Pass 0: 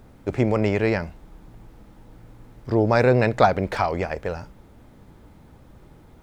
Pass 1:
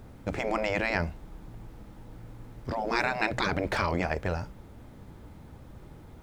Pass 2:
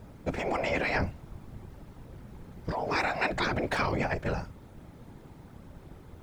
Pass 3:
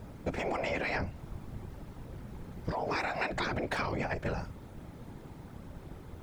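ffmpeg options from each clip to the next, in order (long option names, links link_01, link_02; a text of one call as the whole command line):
ffmpeg -i in.wav -af "afftfilt=real='re*lt(hypot(re,im),0.316)':imag='im*lt(hypot(re,im),0.316)':win_size=1024:overlap=0.75,equalizer=frequency=90:width=1.2:gain=3" out.wav
ffmpeg -i in.wav -af "afftfilt=real='hypot(re,im)*cos(2*PI*random(0))':imag='hypot(re,im)*sin(2*PI*random(1))':win_size=512:overlap=0.75,volume=5.5dB" out.wav
ffmpeg -i in.wav -af "acompressor=threshold=-32dB:ratio=5,volume=2dB" out.wav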